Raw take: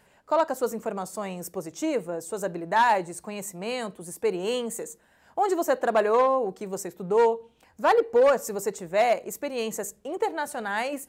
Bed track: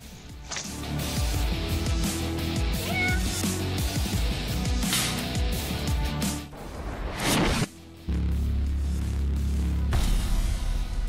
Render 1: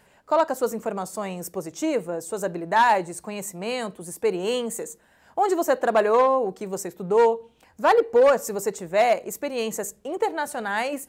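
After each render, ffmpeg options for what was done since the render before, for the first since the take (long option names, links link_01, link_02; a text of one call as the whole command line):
ffmpeg -i in.wav -af "volume=2.5dB" out.wav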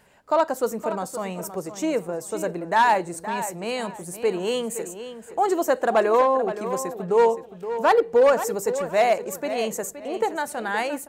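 ffmpeg -i in.wav -filter_complex "[0:a]asplit=2[link_01][link_02];[link_02]adelay=520,lowpass=frequency=4700:poles=1,volume=-11dB,asplit=2[link_03][link_04];[link_04]adelay=520,lowpass=frequency=4700:poles=1,volume=0.28,asplit=2[link_05][link_06];[link_06]adelay=520,lowpass=frequency=4700:poles=1,volume=0.28[link_07];[link_01][link_03][link_05][link_07]amix=inputs=4:normalize=0" out.wav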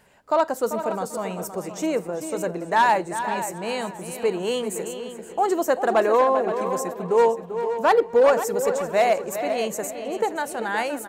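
ffmpeg -i in.wav -filter_complex "[0:a]asplit=2[link_01][link_02];[link_02]adelay=392,lowpass=frequency=4600:poles=1,volume=-10dB,asplit=2[link_03][link_04];[link_04]adelay=392,lowpass=frequency=4600:poles=1,volume=0.23,asplit=2[link_05][link_06];[link_06]adelay=392,lowpass=frequency=4600:poles=1,volume=0.23[link_07];[link_01][link_03][link_05][link_07]amix=inputs=4:normalize=0" out.wav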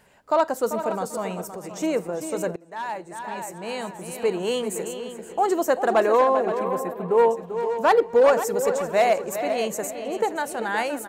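ffmpeg -i in.wav -filter_complex "[0:a]asettb=1/sr,asplit=3[link_01][link_02][link_03];[link_01]atrim=end=1.414[link_04];[link_02]atrim=start=1.41:end=1.81,asetpts=PTS-STARTPTS,afade=type=in:duration=0.004:curve=qsin,afade=type=out:start_time=0.396:duration=0.004:curve=qsin,acompressor=threshold=-31dB:ratio=6:attack=3.2:release=140:knee=1:detection=peak[link_05];[link_03]atrim=start=1.806[link_06];[link_04][link_05]acrossfade=duration=0.004:curve1=hsin:curve2=qsin[link_07];[link_07][link_06]acrossfade=duration=0.004:curve1=qsin:curve2=hsin,asettb=1/sr,asplit=3[link_08][link_09][link_10];[link_08]atrim=end=6.594[link_11];[link_09]atrim=start=6.59:end=7.31,asetpts=PTS-STARTPTS,afade=type=in:duration=0.004:curve=qsin,afade=type=out:start_time=0.716:duration=0.004:curve=qsin,equalizer=frequency=6200:width=1.1:gain=-13.5[link_12];[link_10]atrim=start=7.306[link_13];[link_11][link_12]acrossfade=duration=0.004:curve1=hsin:curve2=qsin[link_14];[link_14][link_13]acrossfade=duration=0.004:curve1=qsin:curve2=hsin,asplit=2[link_15][link_16];[link_15]atrim=end=2.56,asetpts=PTS-STARTPTS,afade=type=out:start_time=2.556:duration=0.004:curve=hsin:silence=0.0749894[link_17];[link_16]atrim=start=2.56,asetpts=PTS-STARTPTS,afade=type=in:duration=1.78:silence=0.0749894[link_18];[link_17][link_18]concat=n=2:v=0:a=1" out.wav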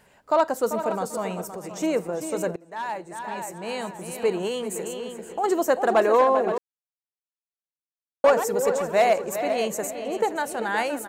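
ffmpeg -i in.wav -filter_complex "[0:a]asettb=1/sr,asplit=3[link_01][link_02][link_03];[link_01]atrim=end=4.474[link_04];[link_02]atrim=start=4.47:end=5.44,asetpts=PTS-STARTPTS,afade=type=in:duration=0.004:curve=qsin,afade=type=out:start_time=0.966:duration=0.004:curve=qsin,acompressor=threshold=-27dB:ratio=2:attack=3.2:release=140:knee=1:detection=peak[link_05];[link_03]atrim=start=5.436[link_06];[link_04][link_05]acrossfade=duration=0.004:curve1=hsin:curve2=qsin[link_07];[link_07][link_06]acrossfade=duration=0.004:curve1=qsin:curve2=hsin,asplit=3[link_08][link_09][link_10];[link_08]atrim=end=6.58,asetpts=PTS-STARTPTS,afade=type=out:start_time=6.576:duration=0.004:curve=hsin[link_11];[link_09]atrim=start=6.58:end=8.24,asetpts=PTS-STARTPTS,volume=0[link_12];[link_10]atrim=start=8.24,asetpts=PTS-STARTPTS,afade=type=in:duration=0.004:curve=hsin[link_13];[link_11][link_12][link_13]concat=n=3:v=0:a=1" out.wav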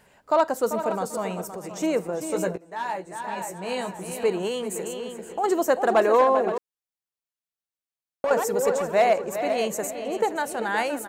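ffmpeg -i in.wav -filter_complex "[0:a]asettb=1/sr,asplit=3[link_01][link_02][link_03];[link_01]atrim=end=2.284[link_04];[link_02]atrim=start=2.28:end=4.24,asetpts=PTS-STARTPTS,afade=type=in:duration=0.004:curve=qsin,afade=type=out:start_time=1.956:duration=0.004:curve=qsin,asplit=2[link_05][link_06];[link_06]adelay=16,volume=-6dB[link_07];[link_05][link_07]amix=inputs=2:normalize=0,atrim=end_sample=86436[link_08];[link_03]atrim=start=4.236[link_09];[link_04][link_08]acrossfade=duration=0.004:curve1=hsin:curve2=qsin[link_10];[link_10][link_09]acrossfade=duration=0.004:curve1=qsin:curve2=hsin,asettb=1/sr,asplit=3[link_11][link_12][link_13];[link_11]atrim=end=6.494[link_14];[link_12]atrim=start=6.49:end=8.31,asetpts=PTS-STARTPTS,afade=type=in:duration=0.004:curve=qsin,afade=type=out:start_time=1.816:duration=0.004:curve=qsin,acompressor=threshold=-22dB:ratio=6:attack=3.2:release=140:knee=1:detection=peak[link_15];[link_13]atrim=start=8.306[link_16];[link_14][link_15]acrossfade=duration=0.004:curve1=hsin:curve2=qsin[link_17];[link_17][link_16]acrossfade=duration=0.004:curve1=qsin:curve2=hsin,asettb=1/sr,asplit=3[link_18][link_19][link_20];[link_18]atrim=end=8.944[link_21];[link_19]atrim=start=8.94:end=9.42,asetpts=PTS-STARTPTS,afade=type=in:duration=0.004:curve=qsin,afade=type=out:start_time=0.476:duration=0.004:curve=qsin,highshelf=frequency=4500:gain=-5.5[link_22];[link_20]atrim=start=9.416[link_23];[link_21][link_22]acrossfade=duration=0.004:curve1=hsin:curve2=qsin[link_24];[link_24][link_23]acrossfade=duration=0.004:curve1=qsin:curve2=hsin" out.wav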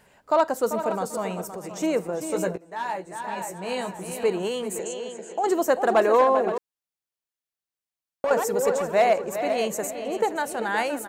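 ffmpeg -i in.wav -filter_complex "[0:a]asettb=1/sr,asplit=3[link_01][link_02][link_03];[link_01]atrim=end=4.794[link_04];[link_02]atrim=start=4.79:end=5.47,asetpts=PTS-STARTPTS,afade=type=in:duration=0.004:curve=qsin,afade=type=out:start_time=0.676:duration=0.004:curve=qsin,highpass=210,equalizer=frequency=250:width_type=q:width=4:gain=-3,equalizer=frequency=630:width_type=q:width=4:gain=4,equalizer=frequency=1200:width_type=q:width=4:gain=-6,equalizer=frequency=6700:width_type=q:width=4:gain=7,lowpass=frequency=8400:width=0.5412,lowpass=frequency=8400:width=1.3066[link_05];[link_03]atrim=start=5.466[link_06];[link_04][link_05]acrossfade=duration=0.004:curve1=hsin:curve2=qsin[link_07];[link_07][link_06]acrossfade=duration=0.004:curve1=qsin:curve2=hsin" out.wav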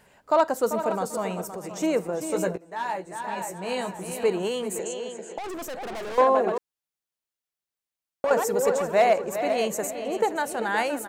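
ffmpeg -i in.wav -filter_complex "[0:a]asettb=1/sr,asplit=3[link_01][link_02][link_03];[link_01]atrim=end=5.384[link_04];[link_02]atrim=start=5.38:end=6.18,asetpts=PTS-STARTPTS,afade=type=in:duration=0.004:curve=qsin,afade=type=out:start_time=0.796:duration=0.004:curve=qsin,aeval=exprs='(tanh(44.7*val(0)+0.35)-tanh(0.35))/44.7':channel_layout=same[link_05];[link_03]atrim=start=6.176[link_06];[link_04][link_05]acrossfade=duration=0.004:curve1=hsin:curve2=qsin[link_07];[link_07][link_06]acrossfade=duration=0.004:curve1=qsin:curve2=hsin" out.wav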